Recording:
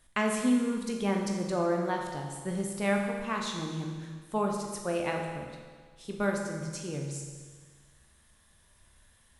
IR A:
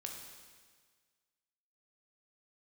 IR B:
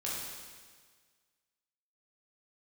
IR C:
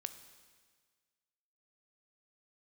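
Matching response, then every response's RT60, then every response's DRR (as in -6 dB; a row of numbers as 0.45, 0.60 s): A; 1.6, 1.6, 1.6 s; 1.0, -6.5, 10.0 dB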